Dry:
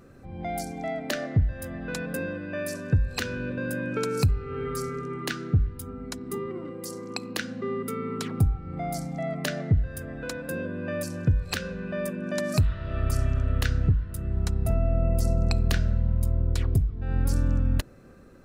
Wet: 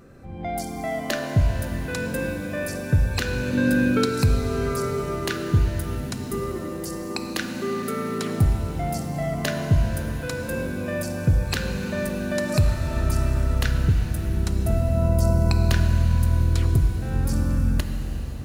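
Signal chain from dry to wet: 3.53–4.06 fifteen-band EQ 250 Hz +10 dB, 1600 Hz +4 dB, 4000 Hz +10 dB; shimmer reverb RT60 3.9 s, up +7 st, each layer -8 dB, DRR 5 dB; gain +2.5 dB

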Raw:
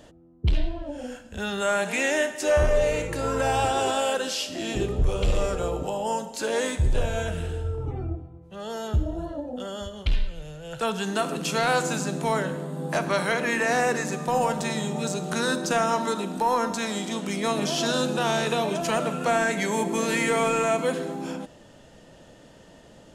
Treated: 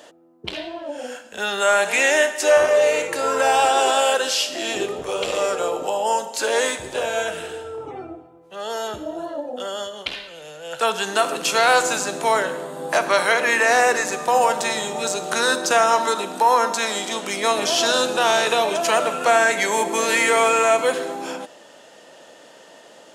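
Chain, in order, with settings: HPF 480 Hz 12 dB/oct; gain +8 dB

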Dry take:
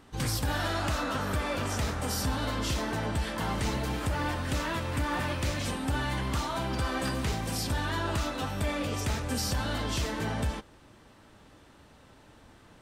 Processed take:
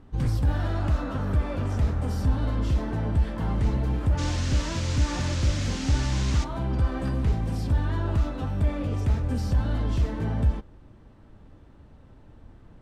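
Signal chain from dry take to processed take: tilt -3.5 dB/oct; 4.17–6.43 band noise 1200–6800 Hz -35 dBFS; gain -4 dB

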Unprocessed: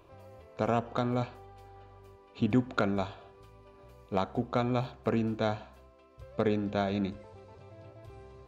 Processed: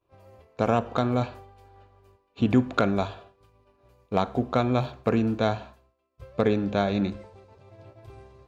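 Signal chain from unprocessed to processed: expander -45 dBFS; on a send: reverb RT60 0.40 s, pre-delay 28 ms, DRR 21 dB; on the sum: gain +5.5 dB

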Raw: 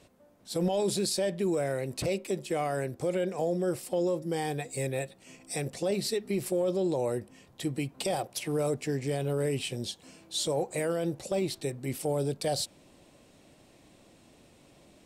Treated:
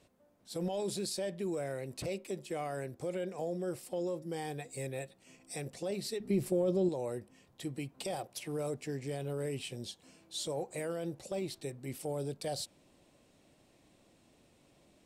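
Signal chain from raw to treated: 6.2–6.89 low shelf 450 Hz +10.5 dB; gain -7.5 dB

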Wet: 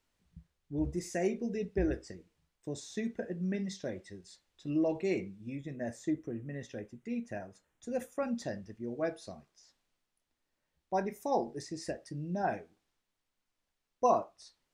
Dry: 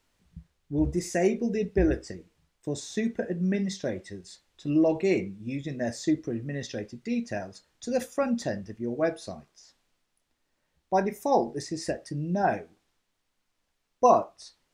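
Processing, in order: 5.5–8.23 bell 4600 Hz -13 dB 0.73 oct; gain -7.5 dB

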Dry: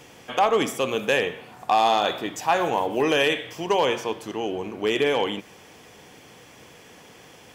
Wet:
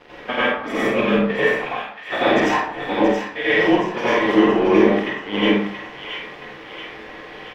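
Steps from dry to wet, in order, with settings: HPF 240 Hz 12 dB/oct; bell 1900 Hz +5.5 dB 0.27 oct; negative-ratio compressor -32 dBFS, ratio -0.5; crossover distortion -39 dBFS; air absorption 340 m; doubler 49 ms -4.5 dB; on a send: thin delay 0.677 s, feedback 51%, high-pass 1500 Hz, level -6.5 dB; on the sum: plate-style reverb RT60 0.65 s, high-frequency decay 0.55×, pre-delay 75 ms, DRR -9.5 dB; gain +5 dB

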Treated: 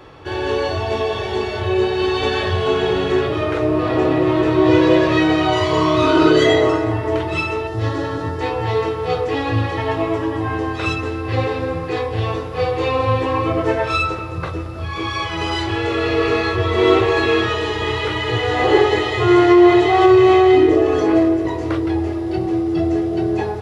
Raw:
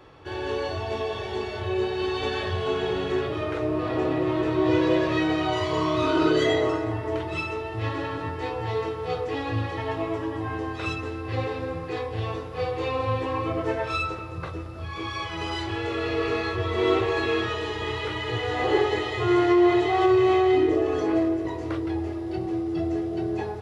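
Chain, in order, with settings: 7.67–8.41 fifteen-band EQ 1000 Hz -4 dB, 2500 Hz -10 dB, 6300 Hz +4 dB; gain +8.5 dB

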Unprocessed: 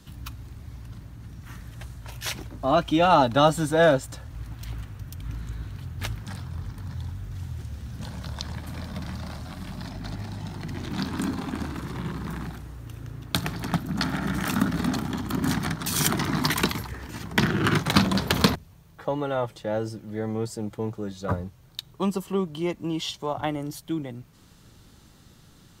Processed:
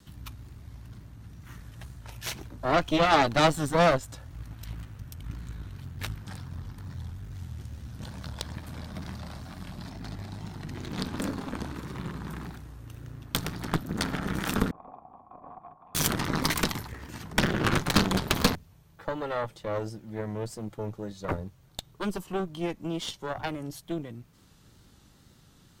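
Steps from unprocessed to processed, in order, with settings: wow and flutter 63 cents; added harmonics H 8 -14 dB, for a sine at -3 dBFS; 14.71–15.95 vocal tract filter a; gain -4.5 dB

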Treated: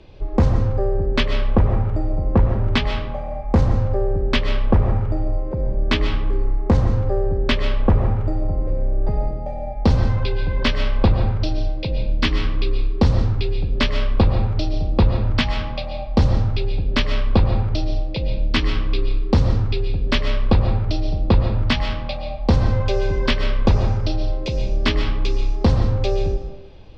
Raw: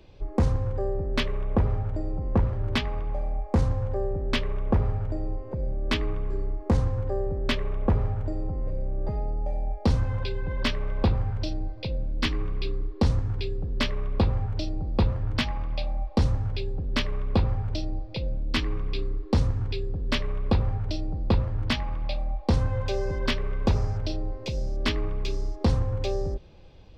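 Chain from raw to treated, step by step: LPF 5700 Hz 12 dB/oct; reverb RT60 0.65 s, pre-delay 90 ms, DRR 6.5 dB; gain +6.5 dB

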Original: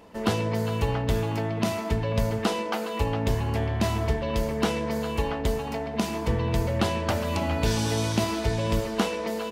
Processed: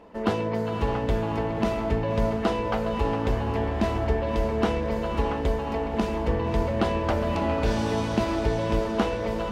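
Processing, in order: LPF 1500 Hz 6 dB/oct; bell 120 Hz -8 dB 1.1 oct; diffused feedback echo 0.585 s, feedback 49%, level -7.5 dB; gain +2.5 dB

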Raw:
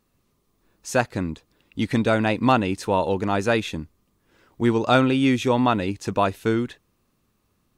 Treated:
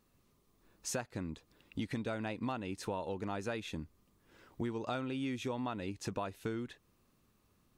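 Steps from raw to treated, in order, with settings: compressor 6:1, threshold -33 dBFS, peak gain reduction 19 dB; gain -3 dB

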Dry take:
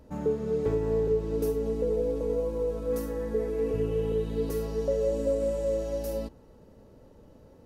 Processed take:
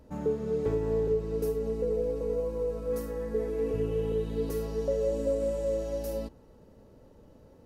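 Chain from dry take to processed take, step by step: 1.14–3.35 notch comb 300 Hz; gain -1.5 dB

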